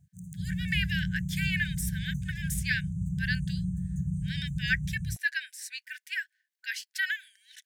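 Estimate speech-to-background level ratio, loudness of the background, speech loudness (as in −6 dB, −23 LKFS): 0.5 dB, −34.0 LKFS, −33.5 LKFS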